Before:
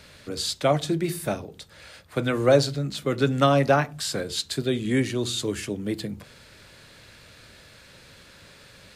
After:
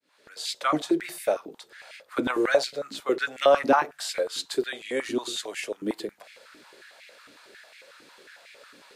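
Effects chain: opening faded in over 0.57 s; 2.3–2.91 upward compressor, threshold -21 dBFS; stepped high-pass 11 Hz 290–2200 Hz; gain -4 dB

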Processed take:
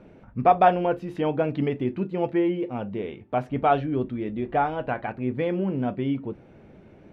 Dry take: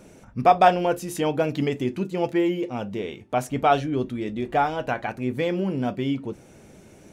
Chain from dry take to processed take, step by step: air absorption 390 m

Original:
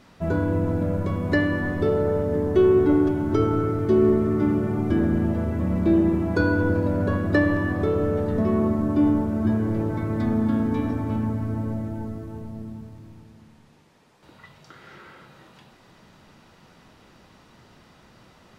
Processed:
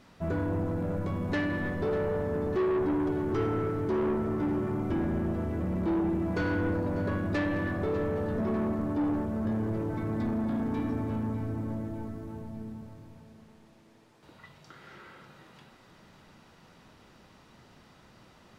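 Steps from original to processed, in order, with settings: soft clip -20.5 dBFS, distortion -11 dB; split-band echo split 300 Hz, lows 0.32 s, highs 0.597 s, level -14 dB; gain -4 dB

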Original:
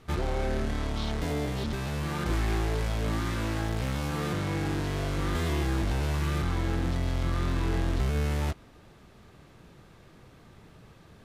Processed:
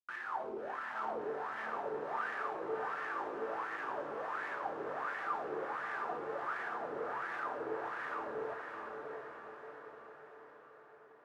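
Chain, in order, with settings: HPF 310 Hz 12 dB/oct; high shelf 5900 Hz +5.5 dB; fixed phaser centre 2800 Hz, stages 8; Schmitt trigger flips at -41.5 dBFS; wah 1.4 Hz 420–1800 Hz, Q 13; on a send: diffused feedback echo 0.655 s, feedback 57%, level -4 dB; on the sum: non-linear reverb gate 0.26 s falling, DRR 6.5 dB; gain +14 dB

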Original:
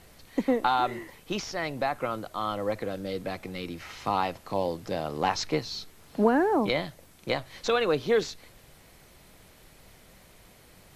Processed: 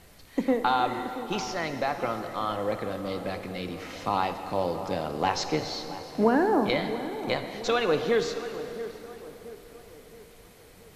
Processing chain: tape echo 0.677 s, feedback 53%, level -12 dB, low-pass 1300 Hz; plate-style reverb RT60 3.6 s, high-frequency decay 0.85×, DRR 7.5 dB

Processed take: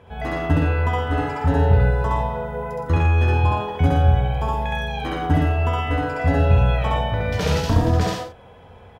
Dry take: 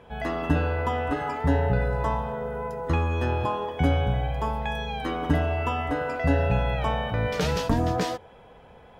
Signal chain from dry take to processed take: bell 92 Hz +14.5 dB 0.31 oct; on a send: loudspeakers at several distances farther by 23 m 0 dB, 40 m -5 dB, 53 m -10 dB

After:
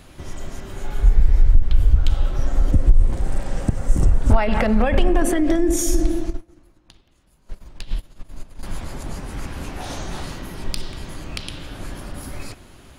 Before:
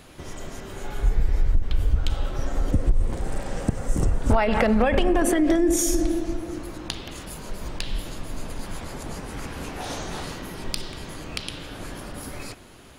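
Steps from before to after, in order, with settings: low shelf 110 Hz +8 dB; notch 460 Hz, Q 12; 6.3–8.63 upward expander 2.5:1, over -32 dBFS

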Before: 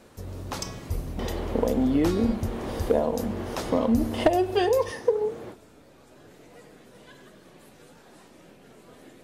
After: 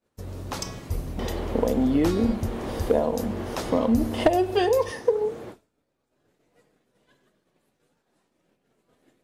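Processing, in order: expander -38 dBFS; gain +1 dB

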